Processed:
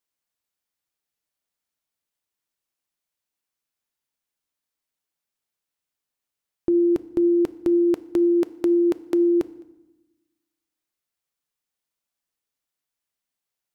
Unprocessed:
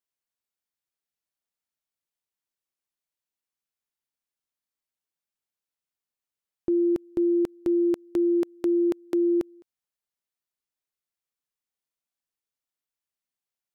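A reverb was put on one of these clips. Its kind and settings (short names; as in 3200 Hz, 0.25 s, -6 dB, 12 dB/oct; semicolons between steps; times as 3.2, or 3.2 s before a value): FDN reverb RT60 1 s, low-frequency decay 1.45×, high-frequency decay 0.75×, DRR 15 dB; gain +4.5 dB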